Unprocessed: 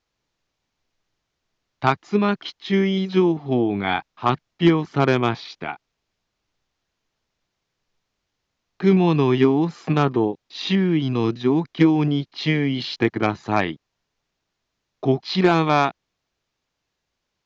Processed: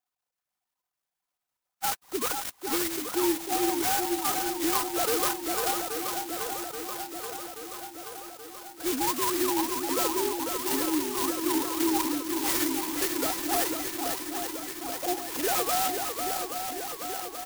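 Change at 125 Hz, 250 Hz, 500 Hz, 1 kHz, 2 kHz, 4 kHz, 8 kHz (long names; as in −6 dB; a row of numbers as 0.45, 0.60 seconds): −27.0 dB, −10.5 dB, −9.0 dB, −4.5 dB, −6.5 dB, −2.0 dB, can't be measured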